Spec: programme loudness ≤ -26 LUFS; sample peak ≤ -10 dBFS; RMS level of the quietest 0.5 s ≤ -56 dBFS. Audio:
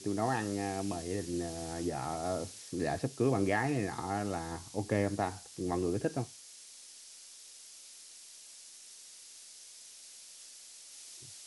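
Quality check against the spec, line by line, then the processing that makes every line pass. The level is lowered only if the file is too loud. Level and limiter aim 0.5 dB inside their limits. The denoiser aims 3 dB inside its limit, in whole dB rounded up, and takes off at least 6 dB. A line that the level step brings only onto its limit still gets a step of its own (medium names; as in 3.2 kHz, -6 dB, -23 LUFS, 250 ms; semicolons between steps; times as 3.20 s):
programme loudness -34.5 LUFS: pass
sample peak -17.5 dBFS: pass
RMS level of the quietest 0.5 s -53 dBFS: fail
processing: noise reduction 6 dB, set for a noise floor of -53 dBFS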